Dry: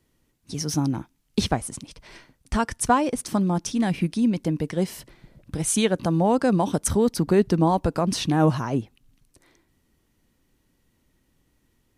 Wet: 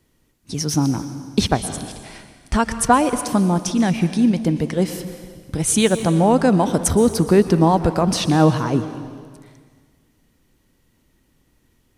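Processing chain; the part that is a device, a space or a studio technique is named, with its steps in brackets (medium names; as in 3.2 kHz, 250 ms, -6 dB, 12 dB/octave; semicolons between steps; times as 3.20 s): saturated reverb return (on a send at -9.5 dB: reverberation RT60 1.6 s, pre-delay 111 ms + saturation -16.5 dBFS, distortion -15 dB); on the sum: trim +5 dB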